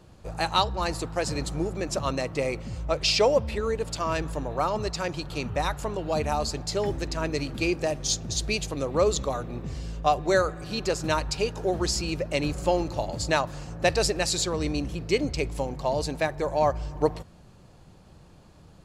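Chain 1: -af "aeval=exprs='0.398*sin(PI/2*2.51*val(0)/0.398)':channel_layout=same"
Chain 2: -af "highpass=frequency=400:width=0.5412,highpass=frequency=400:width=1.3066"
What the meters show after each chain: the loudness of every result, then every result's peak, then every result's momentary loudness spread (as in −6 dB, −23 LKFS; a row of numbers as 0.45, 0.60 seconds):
−17.0, −28.5 LKFS; −8.0, −8.0 dBFS; 6, 9 LU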